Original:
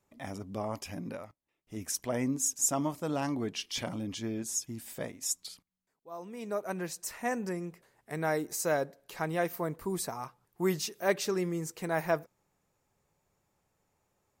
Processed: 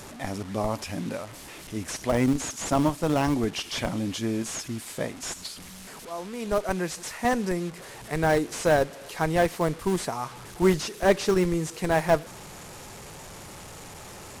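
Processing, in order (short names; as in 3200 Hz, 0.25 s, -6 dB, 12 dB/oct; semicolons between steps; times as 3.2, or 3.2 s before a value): delta modulation 64 kbps, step -44 dBFS; in parallel at -3.5 dB: Schmitt trigger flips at -27.5 dBFS; on the sum: gain +7.5 dB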